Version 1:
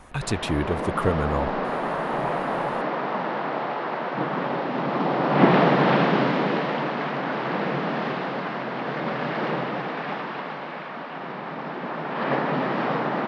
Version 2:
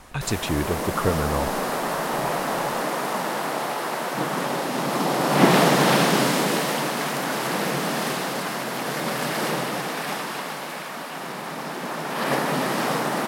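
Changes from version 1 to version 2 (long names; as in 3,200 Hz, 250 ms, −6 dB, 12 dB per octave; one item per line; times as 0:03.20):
background: remove Gaussian smoothing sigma 2.6 samples
master: add parametric band 6,900 Hz +4.5 dB 0.85 octaves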